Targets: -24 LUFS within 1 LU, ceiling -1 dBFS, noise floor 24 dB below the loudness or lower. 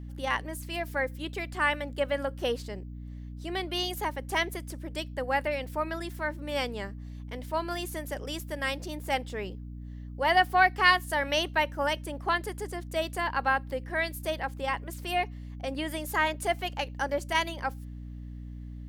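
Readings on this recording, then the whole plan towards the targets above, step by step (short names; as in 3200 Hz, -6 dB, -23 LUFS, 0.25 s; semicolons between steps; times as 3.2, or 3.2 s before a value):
hum 60 Hz; harmonics up to 300 Hz; hum level -38 dBFS; loudness -30.0 LUFS; peak -9.0 dBFS; loudness target -24.0 LUFS
-> notches 60/120/180/240/300 Hz; gain +6 dB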